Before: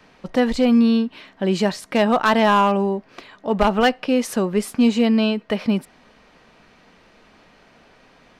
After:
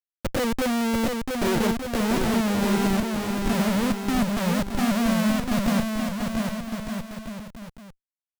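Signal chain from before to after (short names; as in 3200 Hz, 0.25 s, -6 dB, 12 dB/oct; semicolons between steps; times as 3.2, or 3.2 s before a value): HPF 120 Hz 6 dB/oct; low shelf 420 Hz -9 dB; AGC gain up to 11 dB; envelope flanger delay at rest 4.8 ms, full sweep at -13 dBFS; overloaded stage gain 22 dB; low-pass sweep 540 Hz -> 190 Hz, 0.61–3.65; Schmitt trigger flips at -32.5 dBFS; bouncing-ball echo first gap 0.69 s, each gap 0.75×, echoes 5; gain +2.5 dB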